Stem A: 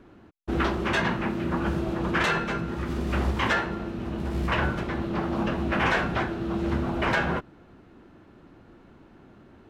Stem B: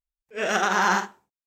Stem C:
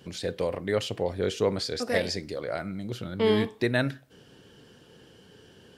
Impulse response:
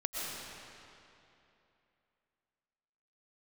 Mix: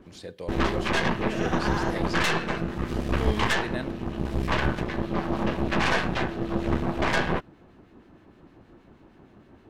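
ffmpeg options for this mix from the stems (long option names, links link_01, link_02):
-filter_complex "[0:a]acrossover=split=1500[link_01][link_02];[link_01]aeval=exprs='val(0)*(1-0.5/2+0.5/2*cos(2*PI*6.4*n/s))':channel_layout=same[link_03];[link_02]aeval=exprs='val(0)*(1-0.5/2-0.5/2*cos(2*PI*6.4*n/s))':channel_layout=same[link_04];[link_03][link_04]amix=inputs=2:normalize=0,aeval=exprs='0.211*(cos(1*acos(clip(val(0)/0.211,-1,1)))-cos(1*PI/2))+0.0376*(cos(6*acos(clip(val(0)/0.211,-1,1)))-cos(6*PI/2))':channel_layout=same,volume=1.5dB[link_05];[1:a]lowpass=5200,adelay=900,volume=-9.5dB[link_06];[2:a]agate=range=-33dB:threshold=-50dB:ratio=3:detection=peak,volume=-9dB[link_07];[link_05][link_06][link_07]amix=inputs=3:normalize=0,bandreject=frequency=1400:width=14"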